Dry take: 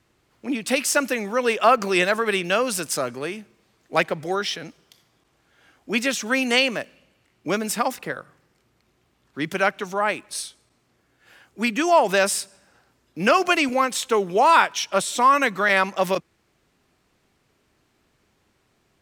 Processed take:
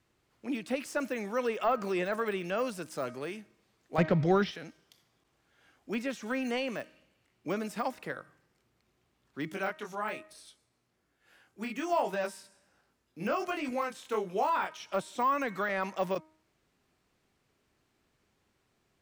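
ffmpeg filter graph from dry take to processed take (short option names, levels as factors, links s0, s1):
-filter_complex "[0:a]asettb=1/sr,asplit=3[s0][s1][s2];[s0]atrim=end=3.984[s3];[s1]atrim=start=3.98:end=4.51,asetpts=PTS-STARTPTS,afade=t=in:d=0.004:c=qsin,afade=t=out:st=0.526:d=0.004:c=qsin,lowpass=f=5400:w=0.5412,lowpass=f=5400:w=1.3066,acontrast=60,bass=f=250:g=13,treble=f=4000:g=0[s4];[s2]atrim=start=4.506[s5];[s3][s4]acrossfade=d=0.004:c1=hsin:c2=qsin[s6];[s6][s5]acrossfade=d=0.004:c1=qsin:c2=hsin,asettb=1/sr,asplit=3[s7][s8][s9];[s7]atrim=end=9.514[s10];[s8]atrim=start=9.51:end=14.8,asetpts=PTS-STARTPTS,afade=t=in:d=0.004:c=qsin,afade=t=out:st=5.286:d=0.004:c=qsin,equalizer=f=11000:w=6.6:g=6,flanger=delay=20:depth=4.1:speed=1.2[s11];[s9]atrim=start=14.796[s12];[s10][s11]acrossfade=d=0.004:c1=hsin:c2=qsin[s13];[s13][s12]acrossfade=d=0.004:c1=qsin:c2=hsin,bandreject=f=313.4:t=h:w=4,bandreject=f=626.8:t=h:w=4,bandreject=f=940.2:t=h:w=4,bandreject=f=1253.6:t=h:w=4,bandreject=f=1567:t=h:w=4,bandreject=f=1880.4:t=h:w=4,bandreject=f=2193.8:t=h:w=4,deesser=0.95,volume=0.398"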